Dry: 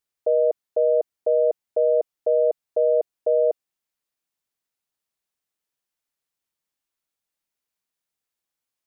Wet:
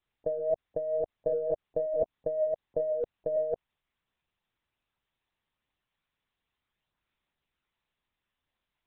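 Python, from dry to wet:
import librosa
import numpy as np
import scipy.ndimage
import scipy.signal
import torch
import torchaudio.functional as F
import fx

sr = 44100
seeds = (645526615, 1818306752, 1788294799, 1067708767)

y = fx.chorus_voices(x, sr, voices=2, hz=0.35, base_ms=20, depth_ms=4.2, mix_pct=50)
y = fx.lpc_vocoder(y, sr, seeds[0], excitation='pitch_kept', order=8)
y = fx.over_compress(y, sr, threshold_db=-31.0, ratio=-1.0)
y = y * 10.0 ** (1.5 / 20.0)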